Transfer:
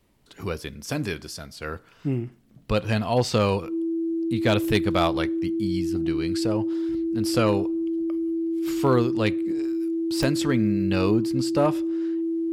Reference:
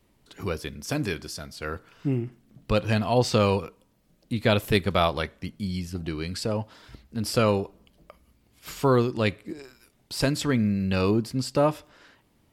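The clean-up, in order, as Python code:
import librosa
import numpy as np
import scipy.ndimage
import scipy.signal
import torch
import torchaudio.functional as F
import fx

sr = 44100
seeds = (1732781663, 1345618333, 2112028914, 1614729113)

y = fx.fix_declip(x, sr, threshold_db=-12.0)
y = fx.fix_declick_ar(y, sr, threshold=10.0)
y = fx.notch(y, sr, hz=330.0, q=30.0)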